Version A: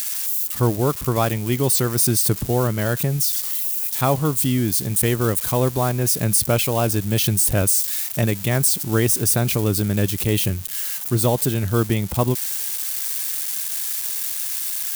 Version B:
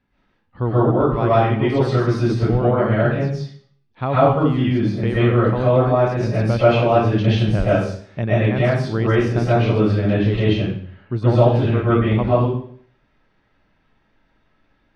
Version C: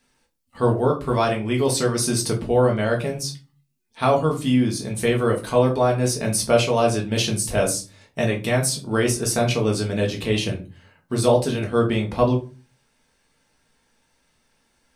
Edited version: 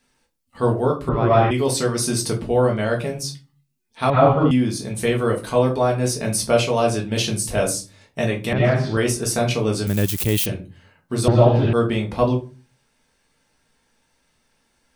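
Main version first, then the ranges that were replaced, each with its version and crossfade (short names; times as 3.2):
C
1.09–1.51 from B
4.1–4.51 from B
8.53–8.97 from B
9.87–10.46 from A
11.28–11.73 from B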